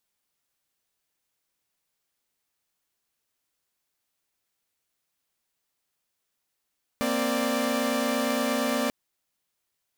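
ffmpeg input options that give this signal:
ffmpeg -f lavfi -i "aevalsrc='0.0501*((2*mod(233.08*t,1)-1)+(2*mod(261.63*t,1)-1)+(2*mod(587.33*t,1)-1))':duration=1.89:sample_rate=44100" out.wav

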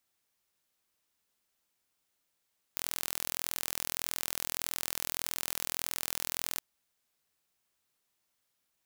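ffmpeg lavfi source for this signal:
ffmpeg -f lavfi -i "aevalsrc='0.473*eq(mod(n,1058),0)':duration=3.83:sample_rate=44100" out.wav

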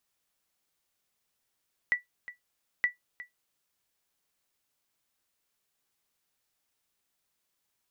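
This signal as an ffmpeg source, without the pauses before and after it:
ffmpeg -f lavfi -i "aevalsrc='0.141*(sin(2*PI*1960*mod(t,0.92))*exp(-6.91*mod(t,0.92)/0.14)+0.15*sin(2*PI*1960*max(mod(t,0.92)-0.36,0))*exp(-6.91*max(mod(t,0.92)-0.36,0)/0.14))':duration=1.84:sample_rate=44100" out.wav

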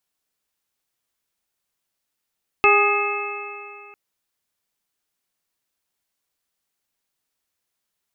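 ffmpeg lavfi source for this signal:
ffmpeg -f lavfi -i "aevalsrc='0.141*pow(10,-3*t/2.43)*sin(2*PI*407.77*t)+0.112*pow(10,-3*t/2.43)*sin(2*PI*820.16*t)+0.158*pow(10,-3*t/2.43)*sin(2*PI*1241.7*t)+0.0251*pow(10,-3*t/2.43)*sin(2*PI*1676.76*t)+0.0794*pow(10,-3*t/2.43)*sin(2*PI*2129.47*t)+0.2*pow(10,-3*t/2.43)*sin(2*PI*2603.68*t)':duration=1.3:sample_rate=44100" out.wav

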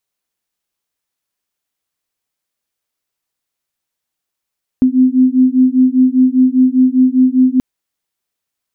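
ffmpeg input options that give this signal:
ffmpeg -f lavfi -i "aevalsrc='0.299*(sin(2*PI*254*t)+sin(2*PI*259*t))':duration=2.78:sample_rate=44100" out.wav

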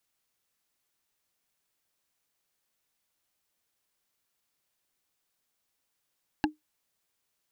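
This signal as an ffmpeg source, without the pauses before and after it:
ffmpeg -f lavfi -i "aevalsrc='0.112*pow(10,-3*t/0.15)*sin(2*PI*305*t)+0.0944*pow(10,-3*t/0.044)*sin(2*PI*840.9*t)+0.0794*pow(10,-3*t/0.02)*sin(2*PI*1648.2*t)+0.0668*pow(10,-3*t/0.011)*sin(2*PI*2724.6*t)+0.0562*pow(10,-3*t/0.007)*sin(2*PI*4068.7*t)':duration=0.45:sample_rate=44100" out.wav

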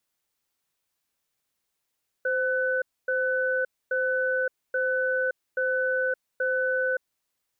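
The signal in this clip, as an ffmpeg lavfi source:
ffmpeg -f lavfi -i "aevalsrc='0.0531*(sin(2*PI*517*t)+sin(2*PI*1500*t))*clip(min(mod(t,0.83),0.57-mod(t,0.83))/0.005,0,1)':duration=4.91:sample_rate=44100" out.wav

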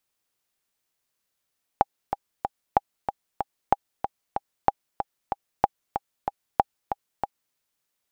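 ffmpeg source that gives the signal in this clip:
ffmpeg -f lavfi -i "aevalsrc='pow(10,(-3.5-8.5*gte(mod(t,3*60/188),60/188))/20)*sin(2*PI*806*mod(t,60/188))*exp(-6.91*mod(t,60/188)/0.03)':duration=5.74:sample_rate=44100" out.wav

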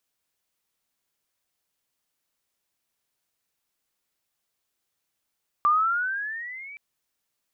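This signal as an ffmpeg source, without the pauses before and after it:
ffmpeg -f lavfi -i "aevalsrc='pow(10,(-16-23*t/1.12)/20)*sin(2*PI*1170*1.12/(12*log(2)/12)*(exp(12*log(2)/12*t/1.12)-1))':duration=1.12:sample_rate=44100" out.wav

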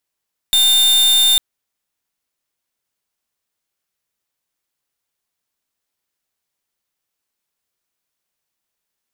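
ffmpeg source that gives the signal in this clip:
ffmpeg -f lavfi -i "aevalsrc='0.237*(2*lt(mod(3610*t,1),0.43)-1)':duration=0.85:sample_rate=44100" out.wav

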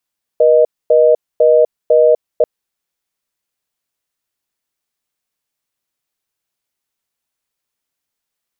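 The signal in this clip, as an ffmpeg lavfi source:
ffmpeg -f lavfi -i "aevalsrc='0.355*(sin(2*PI*480*t)+sin(2*PI*620*t))*clip(min(mod(t,0.5),0.25-mod(t,0.5))/0.005,0,1)':duration=2.04:sample_rate=44100" out.wav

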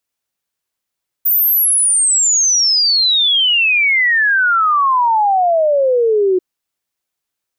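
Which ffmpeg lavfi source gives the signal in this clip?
ffmpeg -f lavfi -i "aevalsrc='0.316*clip(min(t,5.14-t)/0.01,0,1)*sin(2*PI*15000*5.14/log(360/15000)*(exp(log(360/15000)*t/5.14)-1))':duration=5.14:sample_rate=44100" out.wav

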